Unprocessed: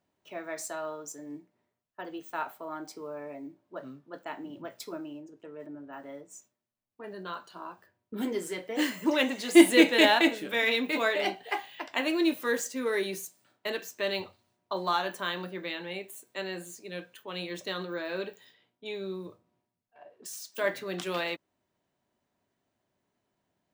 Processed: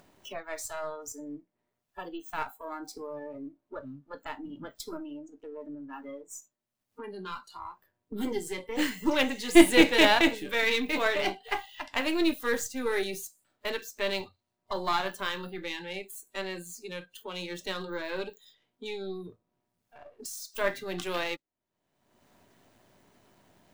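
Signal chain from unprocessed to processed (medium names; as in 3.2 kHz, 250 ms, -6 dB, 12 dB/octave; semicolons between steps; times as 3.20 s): partial rectifier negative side -7 dB; spectral noise reduction 16 dB; upward compressor, threshold -38 dBFS; trim +2.5 dB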